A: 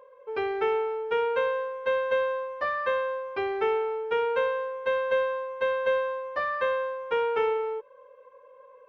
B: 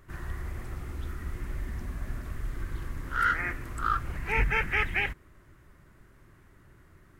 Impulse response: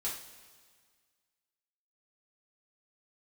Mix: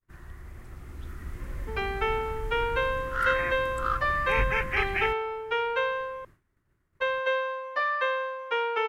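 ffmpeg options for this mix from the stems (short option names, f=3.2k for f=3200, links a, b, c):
-filter_complex "[0:a]highpass=f=1.4k:p=1,adelay=1400,volume=-2dB,asplit=3[a][b][c];[a]atrim=end=6.25,asetpts=PTS-STARTPTS,afade=t=out:st=6.246:d=0.004:c=hsin[d];[b]atrim=start=6.25:end=7,asetpts=PTS-STARTPTS,volume=0[e];[c]atrim=start=7,asetpts=PTS-STARTPTS,afade=t=in:d=0.004:c=hsin[f];[d][e][f]concat=n=3:v=0:a=1[g];[1:a]volume=-8.5dB[h];[g][h]amix=inputs=2:normalize=0,agate=range=-33dB:threshold=-53dB:ratio=3:detection=peak,dynaudnorm=f=400:g=5:m=7.5dB"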